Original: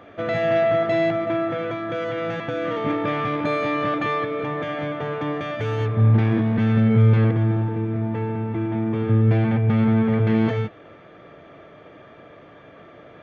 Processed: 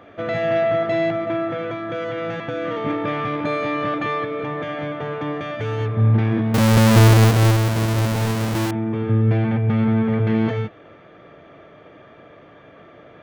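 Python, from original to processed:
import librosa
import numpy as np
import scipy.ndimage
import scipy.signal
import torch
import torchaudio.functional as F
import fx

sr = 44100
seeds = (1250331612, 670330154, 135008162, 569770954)

y = fx.halfwave_hold(x, sr, at=(6.54, 8.71))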